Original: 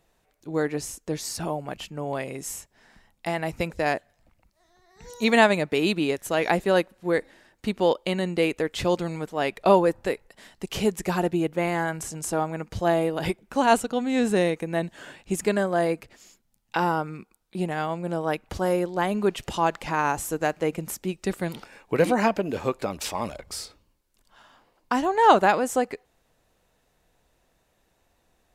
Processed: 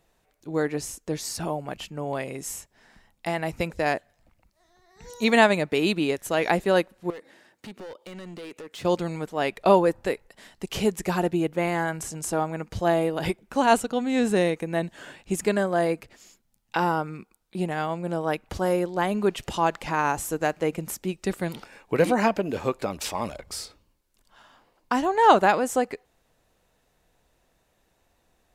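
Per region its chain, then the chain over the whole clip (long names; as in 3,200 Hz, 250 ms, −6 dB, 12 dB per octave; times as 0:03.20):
0:07.10–0:08.85: high-pass filter 140 Hz + downward compressor 3 to 1, threshold −36 dBFS + hard clipping −36 dBFS
whole clip: no processing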